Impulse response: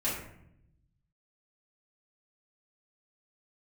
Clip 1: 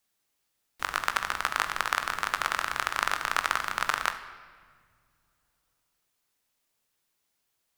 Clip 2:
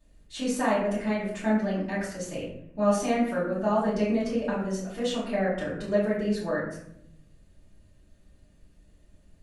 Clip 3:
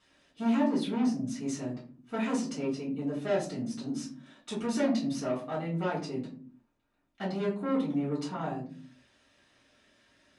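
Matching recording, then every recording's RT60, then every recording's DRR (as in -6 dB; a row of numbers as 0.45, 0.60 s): 2; 1.9 s, 0.75 s, not exponential; 7.5, -10.0, -8.5 dB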